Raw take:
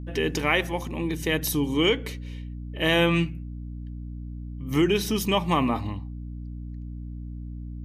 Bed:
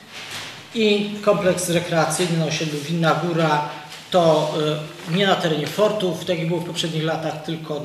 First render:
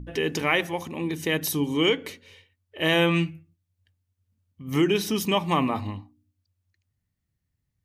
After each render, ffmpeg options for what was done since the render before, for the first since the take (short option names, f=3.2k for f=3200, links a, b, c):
-af "bandreject=f=60:t=h:w=4,bandreject=f=120:t=h:w=4,bandreject=f=180:t=h:w=4,bandreject=f=240:t=h:w=4,bandreject=f=300:t=h:w=4"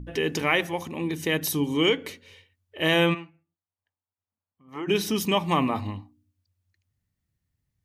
-filter_complex "[0:a]asplit=3[a][b][c];[a]afade=t=out:st=3.13:d=0.02[d];[b]bandpass=f=910:t=q:w=1.9,afade=t=in:st=3.13:d=0.02,afade=t=out:st=4.87:d=0.02[e];[c]afade=t=in:st=4.87:d=0.02[f];[d][e][f]amix=inputs=3:normalize=0"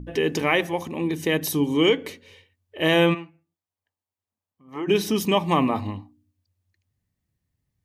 -af "equalizer=f=410:t=o:w=2.8:g=4,bandreject=f=1.4k:w=15"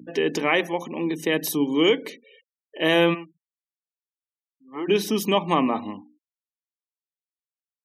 -af "highpass=f=180:w=0.5412,highpass=f=180:w=1.3066,afftfilt=real='re*gte(hypot(re,im),0.00708)':imag='im*gte(hypot(re,im),0.00708)':win_size=1024:overlap=0.75"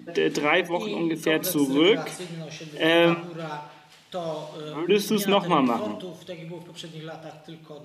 -filter_complex "[1:a]volume=-15.5dB[a];[0:a][a]amix=inputs=2:normalize=0"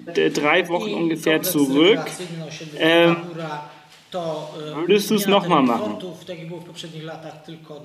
-af "volume=4.5dB,alimiter=limit=-3dB:level=0:latency=1"